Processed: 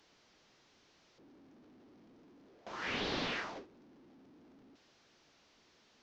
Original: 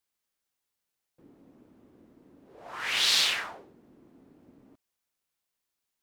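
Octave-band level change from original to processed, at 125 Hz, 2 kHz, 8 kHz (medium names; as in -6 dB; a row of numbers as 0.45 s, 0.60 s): no reading, -9.5 dB, -22.5 dB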